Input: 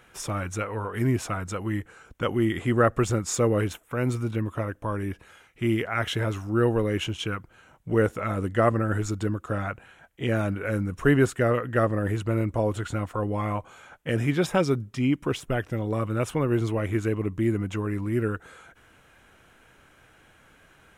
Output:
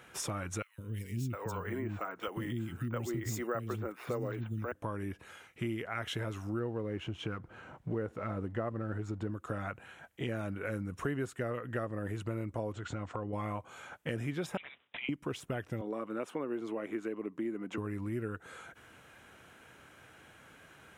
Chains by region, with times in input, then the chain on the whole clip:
0:00.62–0:04.72: high-shelf EQ 5,100 Hz −4 dB + three-band delay without the direct sound highs, lows, mids 160/710 ms, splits 280/2,700 Hz + bad sample-rate conversion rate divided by 2×, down none, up hold
0:06.59–0:09.31: mu-law and A-law mismatch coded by mu + low-pass filter 1,300 Hz 6 dB per octave
0:12.72–0:13.33: Butterworth low-pass 7,900 Hz 48 dB per octave + high-shelf EQ 4,700 Hz −5 dB + downward compressor 2.5 to 1, threshold −30 dBFS
0:14.57–0:15.09: one scale factor per block 7 bits + Butterworth high-pass 1,900 Hz 96 dB per octave + bad sample-rate conversion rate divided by 6×, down none, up filtered
0:15.81–0:17.78: high-pass filter 220 Hz 24 dB per octave + high-shelf EQ 3,200 Hz −10 dB
whole clip: high-pass filter 81 Hz; downward compressor 4 to 1, threshold −35 dBFS

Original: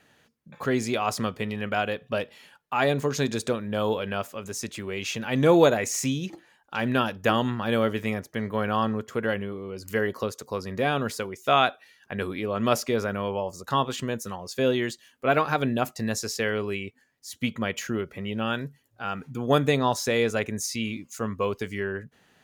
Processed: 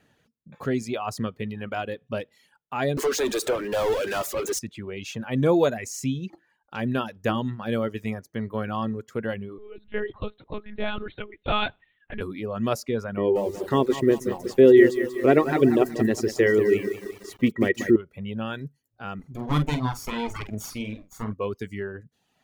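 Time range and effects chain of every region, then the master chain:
0:02.97–0:04.59: Butterworth high-pass 320 Hz + power curve on the samples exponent 0.35
0:09.58–0:12.21: high-shelf EQ 2,100 Hz +10.5 dB + tuned comb filter 86 Hz, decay 0.4 s, harmonics odd, mix 30% + one-pitch LPC vocoder at 8 kHz 210 Hz
0:13.17–0:17.96: hollow resonant body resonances 360/1,900 Hz, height 18 dB, ringing for 30 ms + feedback echo at a low word length 186 ms, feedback 55%, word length 6 bits, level −7 dB
0:19.19–0:21.33: lower of the sound and its delayed copy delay 0.89 ms + double-tracking delay 47 ms −6 dB
whole clip: reverb reduction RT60 0.83 s; low-shelf EQ 480 Hz +8 dB; level −5.5 dB

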